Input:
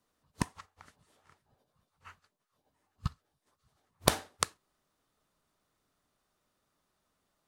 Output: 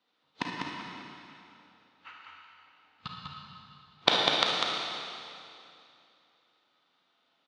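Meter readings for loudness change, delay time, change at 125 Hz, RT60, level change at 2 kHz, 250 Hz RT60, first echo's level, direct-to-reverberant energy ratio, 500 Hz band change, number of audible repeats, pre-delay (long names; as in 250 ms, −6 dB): +5.0 dB, 198 ms, −7.0 dB, 2.6 s, +9.0 dB, 2.6 s, −4.0 dB, −3.5 dB, +4.0 dB, 1, 34 ms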